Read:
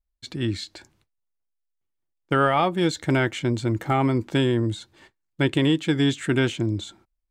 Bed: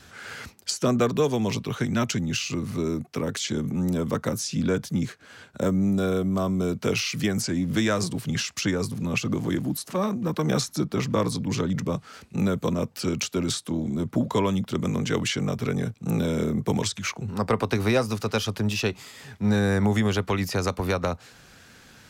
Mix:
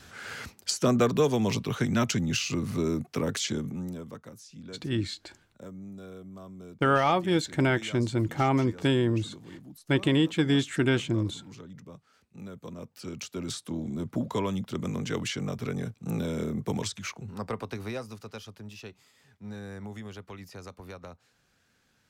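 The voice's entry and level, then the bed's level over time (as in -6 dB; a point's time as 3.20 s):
4.50 s, -3.0 dB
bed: 3.44 s -1 dB
4.28 s -20 dB
12.33 s -20 dB
13.71 s -6 dB
16.93 s -6 dB
18.60 s -18.5 dB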